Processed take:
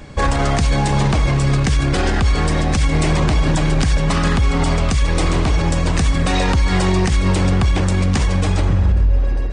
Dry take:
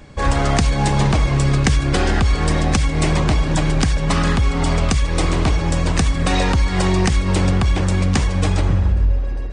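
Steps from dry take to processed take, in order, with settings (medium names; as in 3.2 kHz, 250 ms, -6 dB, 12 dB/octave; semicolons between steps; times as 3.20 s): peak limiter -13 dBFS, peak gain reduction 10 dB; trim +5 dB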